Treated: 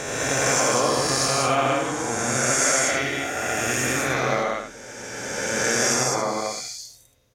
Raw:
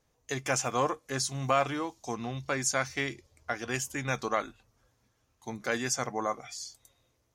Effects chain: spectral swells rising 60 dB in 2.77 s; bell 1100 Hz -4 dB 0.42 oct; loudspeakers at several distances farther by 29 m -3 dB, 53 m -4 dB, 69 m -2 dB, 95 m -10 dB

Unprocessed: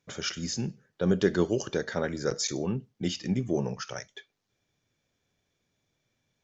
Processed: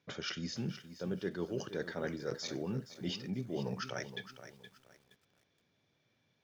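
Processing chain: HPF 94 Hz 12 dB/oct; reverse; compressor 6:1, threshold -37 dBFS, peak gain reduction 17.5 dB; reverse; LPF 5100 Hz 24 dB/oct; lo-fi delay 0.47 s, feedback 35%, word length 10-bit, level -11.5 dB; gain +2 dB

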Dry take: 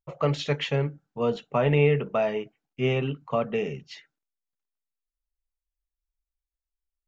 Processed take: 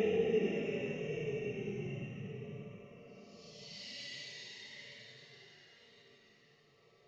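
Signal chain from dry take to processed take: two-slope reverb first 0.45 s, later 2.7 s, from -26 dB, DRR 4 dB; Paulstretch 13×, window 0.05 s, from 3.62; gain -7 dB

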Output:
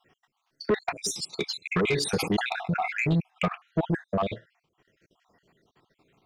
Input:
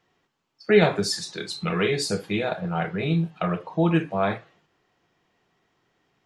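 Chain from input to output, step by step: random spectral dropouts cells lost 57%; dynamic EQ 2400 Hz, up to +6 dB, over -52 dBFS, Q 2.3; in parallel at 0 dB: compressor, threshold -36 dBFS, peak gain reduction 18.5 dB; on the sum: transient shaper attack +5 dB, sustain -9 dB; soft clip -17 dBFS, distortion -10 dB; 1.88–3.22 sustainer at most 76 dB/s; gain -1 dB

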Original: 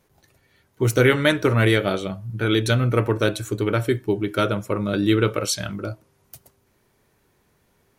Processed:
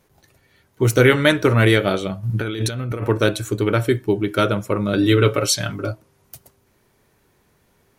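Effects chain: 2.23–3.04 negative-ratio compressor -27 dBFS, ratio -1; 4.97–5.91 comb 7.2 ms, depth 68%; gain +3 dB

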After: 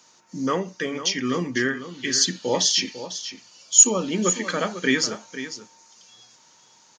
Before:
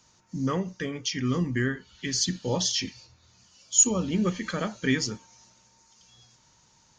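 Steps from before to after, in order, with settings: HPF 290 Hz 12 dB/oct; on a send: echo 0.499 s -12 dB; on the sum: gain +6.5 dB

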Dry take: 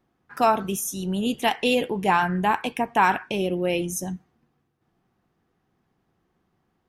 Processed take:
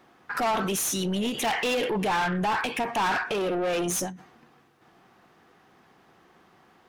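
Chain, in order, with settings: soft clip -23 dBFS, distortion -8 dB; 3.22–4.01 small resonant body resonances 460/700/1200 Hz, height 10 dB, ringing for 45 ms; overdrive pedal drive 20 dB, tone 4800 Hz, clips at -17.5 dBFS; limiter -26.5 dBFS, peak gain reduction 9 dB; ending taper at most 130 dB/s; gain +4.5 dB

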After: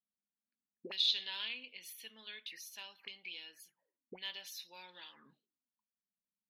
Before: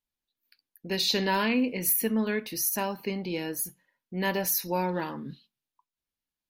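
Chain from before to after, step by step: auto-wah 200–3400 Hz, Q 9.5, up, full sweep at -28.5 dBFS; gain +5 dB

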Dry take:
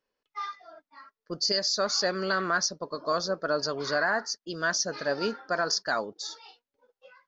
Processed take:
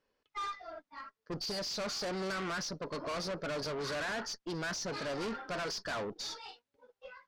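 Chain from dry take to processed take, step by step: low shelf 210 Hz +5 dB; tube stage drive 39 dB, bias 0.35; air absorption 53 m; gain +4.5 dB

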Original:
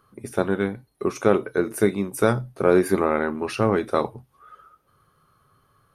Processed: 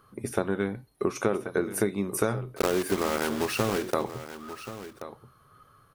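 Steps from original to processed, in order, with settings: 2.57–3.94 block floating point 3-bit; compressor 5:1, threshold -25 dBFS, peak gain reduction 12.5 dB; echo 1.081 s -13 dB; gain +2 dB

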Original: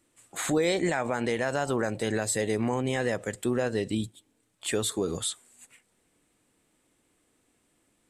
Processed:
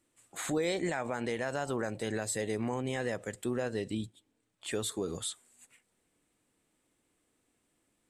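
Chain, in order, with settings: 3.93–4.71 high shelf 9600 Hz -10.5 dB; gain -6 dB

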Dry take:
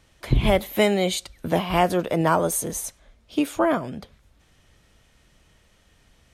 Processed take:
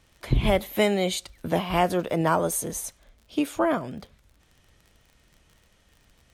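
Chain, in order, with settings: crackle 37/s -40 dBFS; gain -2.5 dB

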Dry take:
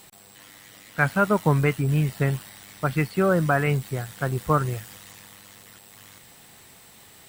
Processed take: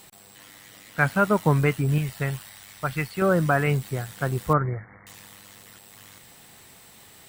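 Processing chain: 1.98–3.22 bell 270 Hz -8 dB 2.1 oct; 4.53–5.07 brick-wall FIR low-pass 2300 Hz

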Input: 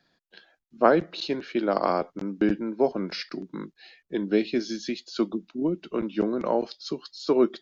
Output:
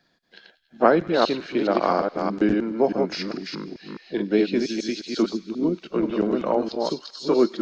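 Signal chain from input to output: reverse delay 0.209 s, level -3.5 dB; thin delay 97 ms, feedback 81%, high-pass 1700 Hz, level -19.5 dB; harmoniser +4 st -17 dB; gain +2 dB

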